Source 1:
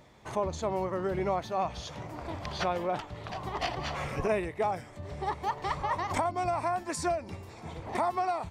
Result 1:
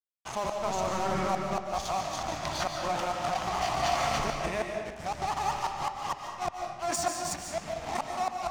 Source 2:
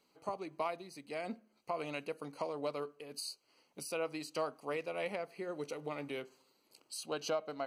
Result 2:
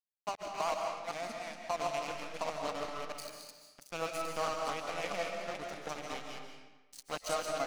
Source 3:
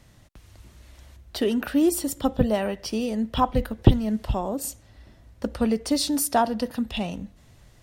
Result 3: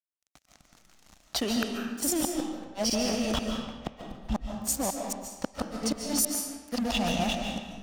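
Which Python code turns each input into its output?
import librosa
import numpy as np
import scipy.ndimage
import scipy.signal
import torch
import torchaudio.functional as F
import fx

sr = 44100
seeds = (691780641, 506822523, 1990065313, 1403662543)

p1 = fx.reverse_delay(x, sr, ms=223, wet_db=-2)
p2 = fx.band_shelf(p1, sr, hz=950.0, db=8.5, octaves=1.1)
p3 = fx.gate_flip(p2, sr, shuts_db=-12.0, range_db=-33)
p4 = fx.over_compress(p3, sr, threshold_db=-28.0, ratio=-0.5)
p5 = p3 + (p4 * librosa.db_to_amplitude(-2.0))
p6 = np.sign(p5) * np.maximum(np.abs(p5) - 10.0 ** (-34.0 / 20.0), 0.0)
p7 = fx.graphic_eq_15(p6, sr, hz=(100, 400, 1000, 6300), db=(-9, -7, -7, 7))
p8 = fx.rev_freeverb(p7, sr, rt60_s=1.2, hf_ratio=0.8, predelay_ms=105, drr_db=2.5)
y = p8 * librosa.db_to_amplitude(-3.0)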